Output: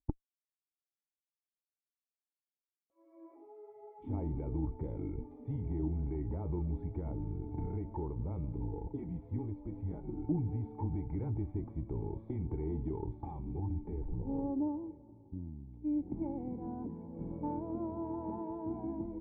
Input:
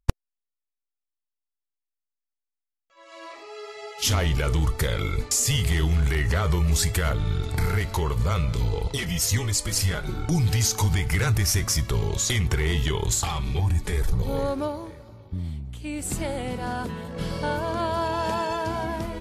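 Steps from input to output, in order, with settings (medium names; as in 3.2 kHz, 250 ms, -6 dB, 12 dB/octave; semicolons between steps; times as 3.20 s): cascade formant filter u; Chebyshev shaper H 2 -21 dB, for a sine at -20.5 dBFS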